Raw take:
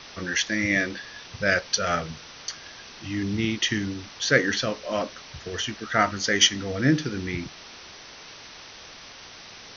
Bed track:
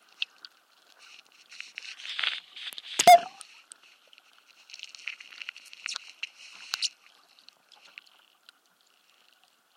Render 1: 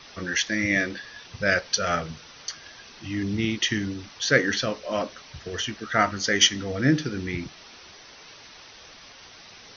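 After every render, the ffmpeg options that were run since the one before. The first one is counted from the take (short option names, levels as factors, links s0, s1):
-af "afftdn=nr=6:nf=-45"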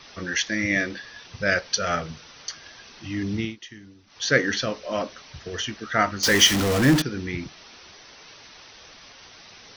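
-filter_complex "[0:a]asettb=1/sr,asplit=3[s0][s1][s2];[s0]atrim=end=6.234[s3];[s1]atrim=start=6.23:end=7.02,asetpts=PTS-STARTPTS,afade=t=in:d=0.004:c=qsin,afade=t=out:st=0.786:d=0.004:c=qsin,aeval=exprs='val(0)+0.5*0.112*sgn(val(0))':c=same[s4];[s2]atrim=start=7.016[s5];[s3][s4]acrossfade=d=0.004:c1=hsin:c2=qsin[s6];[s6][s5]acrossfade=d=0.004:c1=qsin:c2=hsin,asplit=3[s7][s8][s9];[s7]atrim=end=3.56,asetpts=PTS-STARTPTS,afade=t=out:st=3.38:d=0.18:silence=0.133352[s10];[s8]atrim=start=3.56:end=4.06,asetpts=PTS-STARTPTS,volume=0.133[s11];[s9]atrim=start=4.06,asetpts=PTS-STARTPTS,afade=t=in:d=0.18:silence=0.133352[s12];[s10][s11][s12]concat=n=3:v=0:a=1"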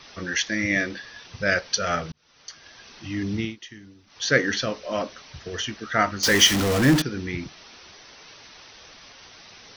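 -filter_complex "[0:a]asplit=2[s0][s1];[s0]atrim=end=2.12,asetpts=PTS-STARTPTS,afade=t=out:st=2.116:d=0.004:c=hsin[s2];[s1]atrim=start=2.12,asetpts=PTS-STARTPTS,afade=t=in:d=0.8[s3];[s2][s3]concat=n=2:v=0:a=1"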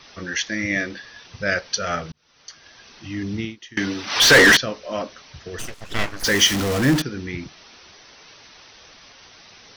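-filter_complex "[0:a]asettb=1/sr,asplit=3[s0][s1][s2];[s0]atrim=end=3.774[s3];[s1]atrim=start=3.77:end=4.57,asetpts=PTS-STARTPTS,afade=t=in:d=0.004:c=qsin,afade=t=out:st=0.796:d=0.004:c=qsin,asplit=2[s4][s5];[s5]highpass=f=720:p=1,volume=79.4,asoftclip=type=tanh:threshold=0.668[s6];[s4][s6]amix=inputs=2:normalize=0,lowpass=f=3900:p=1,volume=0.501[s7];[s2]atrim=start=4.566[s8];[s3][s7]acrossfade=d=0.004:c1=hsin:c2=qsin[s9];[s9][s8]acrossfade=d=0.004:c1=qsin:c2=hsin,asplit=3[s10][s11][s12];[s10]afade=t=out:st=5.58:d=0.02[s13];[s11]aeval=exprs='abs(val(0))':c=same,afade=t=in:st=5.58:d=0.02,afade=t=out:st=6.23:d=0.02[s14];[s12]afade=t=in:st=6.23:d=0.02[s15];[s13][s14][s15]amix=inputs=3:normalize=0"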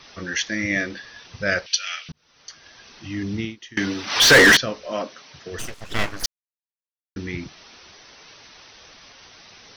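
-filter_complex "[0:a]asettb=1/sr,asplit=3[s0][s1][s2];[s0]atrim=end=1.664[s3];[s1]atrim=start=1.66:end=2.09,asetpts=PTS-STARTPTS,afade=t=in:d=0.004:c=qsin,afade=t=out:st=0.426:d=0.004:c=qsin,highpass=f=2700:t=q:w=2.9[s4];[s2]atrim=start=2.086[s5];[s3][s4]acrossfade=d=0.004:c1=hsin:c2=qsin[s6];[s6][s5]acrossfade=d=0.004:c1=qsin:c2=hsin,asettb=1/sr,asplit=3[s7][s8][s9];[s7]atrim=end=4.914[s10];[s8]atrim=start=4.91:end=5.51,asetpts=PTS-STARTPTS,afade=t=in:d=0.004:c=qsin,afade=t=out:st=0.596:d=0.004:c=qsin,highpass=160[s11];[s9]atrim=start=5.506[s12];[s10][s11]acrossfade=d=0.004:c1=hsin:c2=qsin[s13];[s13][s12]acrossfade=d=0.004:c1=qsin:c2=hsin,asplit=3[s14][s15][s16];[s14]atrim=end=6.26,asetpts=PTS-STARTPTS,afade=t=out:st=6.256:d=0.004:c=hsin[s17];[s15]atrim=start=6.26:end=7.16,asetpts=PTS-STARTPTS,volume=0[s18];[s16]atrim=start=7.16,asetpts=PTS-STARTPTS,afade=t=in:d=0.004:c=hsin[s19];[s17][s18][s19]concat=n=3:v=0:a=1"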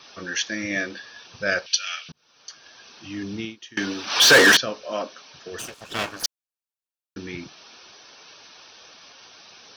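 -af "highpass=f=290:p=1,bandreject=f=2000:w=6"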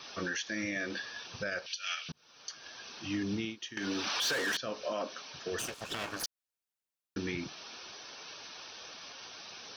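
-af "acompressor=threshold=0.0562:ratio=12,alimiter=level_in=1.19:limit=0.0631:level=0:latency=1:release=159,volume=0.841"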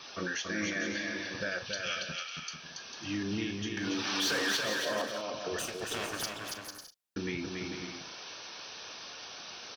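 -filter_complex "[0:a]asplit=2[s0][s1];[s1]adelay=38,volume=0.237[s2];[s0][s2]amix=inputs=2:normalize=0,aecho=1:1:280|448|548.8|609.3|645.6:0.631|0.398|0.251|0.158|0.1"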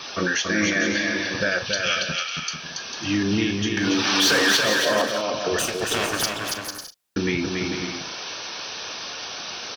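-af "volume=3.98"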